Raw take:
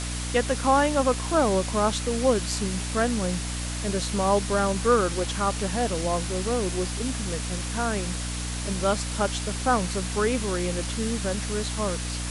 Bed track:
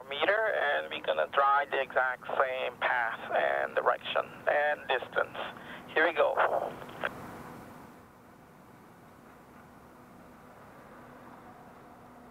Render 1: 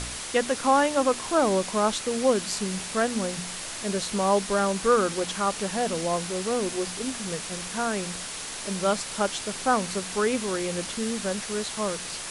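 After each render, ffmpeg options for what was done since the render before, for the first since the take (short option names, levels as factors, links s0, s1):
-af "bandreject=f=60:t=h:w=4,bandreject=f=120:t=h:w=4,bandreject=f=180:t=h:w=4,bandreject=f=240:t=h:w=4,bandreject=f=300:t=h:w=4"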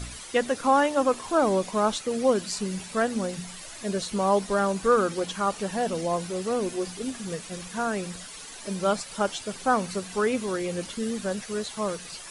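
-af "afftdn=nr=11:nf=-36"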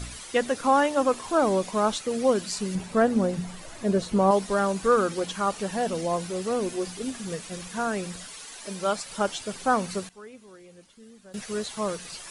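-filter_complex "[0:a]asettb=1/sr,asplit=3[s0][s1][s2];[s0]atrim=end=2.754[s3];[s1]atrim=start=2.75:end=4.31,asetpts=PTS-STARTPTS,afade=t=in:d=0.004:c=qsin,afade=t=out:st=1.556:d=0.004:c=qsin,tiltshelf=f=1500:g=6[s4];[s2]atrim=start=4.306[s5];[s3][s4]acrossfade=d=0.004:c1=hsin:c2=qsin[s6];[s6][s5]acrossfade=d=0.004:c1=qsin:c2=hsin,asettb=1/sr,asplit=3[s7][s8][s9];[s7]atrim=end=8.344[s10];[s8]atrim=start=8.34:end=9.04,asetpts=PTS-STARTPTS,afade=t=in:d=0.004:c=qsin,afade=t=out:st=0.696:d=0.004:c=qsin,lowshelf=f=330:g=-7.5[s11];[s9]atrim=start=9.036[s12];[s10][s11]acrossfade=d=0.004:c1=hsin:c2=qsin[s13];[s13][s12]acrossfade=d=0.004:c1=qsin:c2=hsin,asplit=3[s14][s15][s16];[s14]atrim=end=10.09,asetpts=PTS-STARTPTS,afade=t=out:st=9.94:d=0.15:c=log:silence=0.1[s17];[s15]atrim=start=10.09:end=11.34,asetpts=PTS-STARTPTS,volume=0.1[s18];[s16]atrim=start=11.34,asetpts=PTS-STARTPTS,afade=t=in:d=0.15:c=log:silence=0.1[s19];[s17][s18][s19]concat=n=3:v=0:a=1"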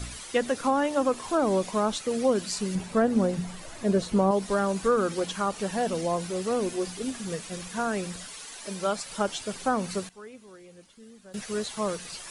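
-filter_complex "[0:a]acrossover=split=440[s0][s1];[s1]acompressor=threshold=0.0631:ratio=4[s2];[s0][s2]amix=inputs=2:normalize=0"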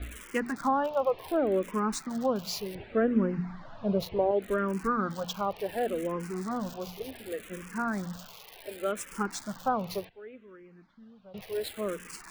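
-filter_complex "[0:a]acrossover=split=3100[s0][s1];[s1]acrusher=bits=5:mix=0:aa=0.000001[s2];[s0][s2]amix=inputs=2:normalize=0,asplit=2[s3][s4];[s4]afreqshift=-0.68[s5];[s3][s5]amix=inputs=2:normalize=1"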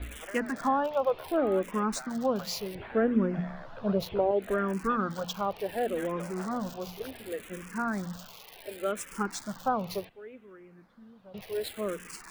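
-filter_complex "[1:a]volume=0.126[s0];[0:a][s0]amix=inputs=2:normalize=0"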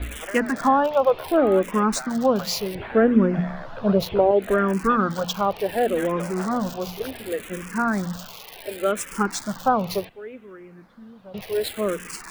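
-af "volume=2.66"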